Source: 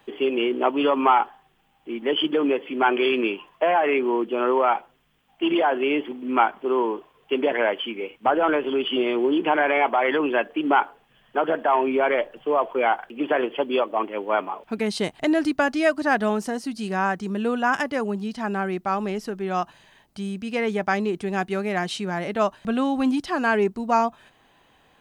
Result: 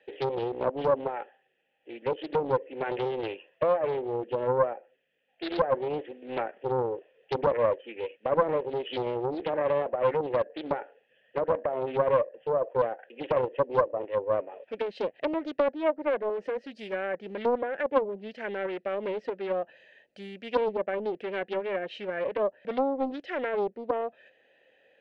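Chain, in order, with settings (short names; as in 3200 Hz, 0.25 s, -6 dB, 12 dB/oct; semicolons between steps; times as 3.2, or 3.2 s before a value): vowel filter e; in parallel at -1.5 dB: vocal rider 2 s; on the sum: treble ducked by the level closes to 1000 Hz, closed at -24.5 dBFS; Doppler distortion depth 0.5 ms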